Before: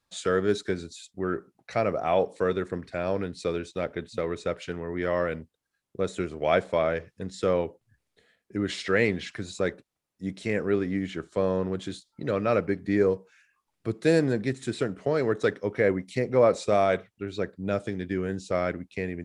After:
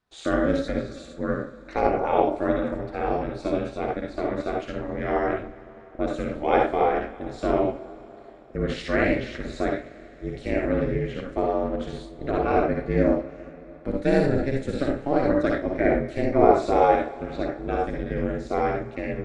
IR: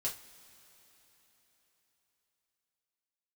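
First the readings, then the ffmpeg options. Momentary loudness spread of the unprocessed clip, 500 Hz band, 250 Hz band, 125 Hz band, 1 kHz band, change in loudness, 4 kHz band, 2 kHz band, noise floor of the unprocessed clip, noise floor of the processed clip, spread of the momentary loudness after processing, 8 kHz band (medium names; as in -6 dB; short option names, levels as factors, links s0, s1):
10 LU, +2.0 dB, +4.0 dB, +2.0 dB, +7.5 dB, +3.0 dB, -2.5 dB, +1.0 dB, -83 dBFS, -45 dBFS, 13 LU, no reading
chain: -filter_complex "[0:a]lowpass=f=2100:p=1,asplit=2[s0][s1];[1:a]atrim=start_sample=2205,adelay=55[s2];[s1][s2]afir=irnorm=-1:irlink=0,volume=0.944[s3];[s0][s3]amix=inputs=2:normalize=0,aeval=exprs='val(0)*sin(2*PI*140*n/s)':c=same,volume=1.41"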